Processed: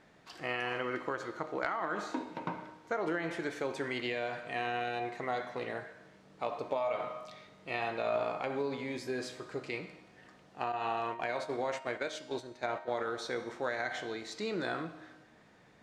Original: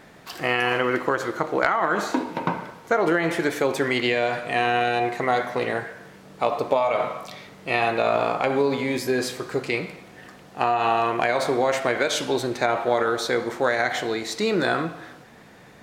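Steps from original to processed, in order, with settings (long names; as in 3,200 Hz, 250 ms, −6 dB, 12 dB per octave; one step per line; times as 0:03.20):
0:10.72–0:13.01: noise gate −23 dBFS, range −10 dB
low-pass filter 7,700 Hz 12 dB per octave
tuned comb filter 310 Hz, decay 1.1 s, mix 70%
level −3 dB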